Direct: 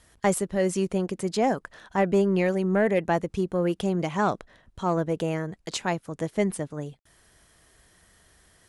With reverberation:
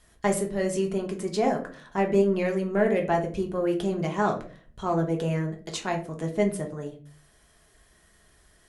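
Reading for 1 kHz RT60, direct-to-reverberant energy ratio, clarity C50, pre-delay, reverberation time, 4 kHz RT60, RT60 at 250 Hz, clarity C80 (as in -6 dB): 0.35 s, 1.5 dB, 11.0 dB, 3 ms, 0.45 s, 0.25 s, 0.55 s, 16.5 dB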